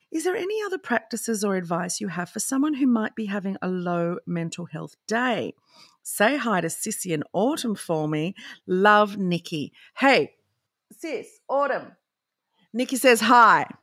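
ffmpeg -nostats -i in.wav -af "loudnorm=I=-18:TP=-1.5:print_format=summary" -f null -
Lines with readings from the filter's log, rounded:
Input Integrated:    -22.6 LUFS
Input True Peak:      -5.0 dBTP
Input LRA:             5.1 LU
Input Threshold:     -33.3 LUFS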